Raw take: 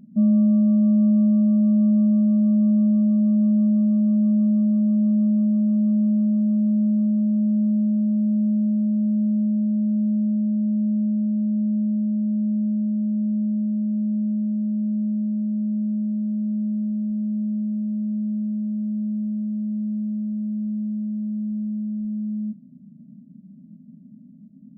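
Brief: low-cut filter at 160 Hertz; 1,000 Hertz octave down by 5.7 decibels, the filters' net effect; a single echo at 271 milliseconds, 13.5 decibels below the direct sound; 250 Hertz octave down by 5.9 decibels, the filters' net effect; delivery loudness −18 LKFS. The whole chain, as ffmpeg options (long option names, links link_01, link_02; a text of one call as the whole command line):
ffmpeg -i in.wav -af "highpass=160,equalizer=frequency=250:width_type=o:gain=-5.5,equalizer=frequency=1000:width_type=o:gain=-7,aecho=1:1:271:0.211,volume=11dB" out.wav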